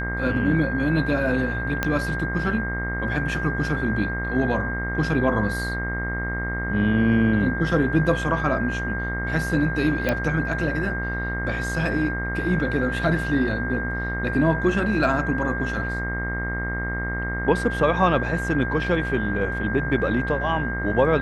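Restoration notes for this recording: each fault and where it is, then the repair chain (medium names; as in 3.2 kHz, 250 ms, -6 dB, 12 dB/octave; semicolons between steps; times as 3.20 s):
buzz 60 Hz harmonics 36 -29 dBFS
whine 1.6 kHz -28 dBFS
1.83 s: pop -8 dBFS
10.09 s: pop -9 dBFS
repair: de-click; de-hum 60 Hz, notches 36; band-stop 1.6 kHz, Q 30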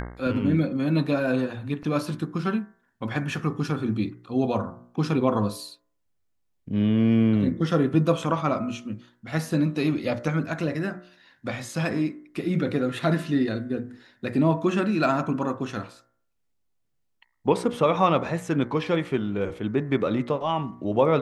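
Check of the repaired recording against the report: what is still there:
1.83 s: pop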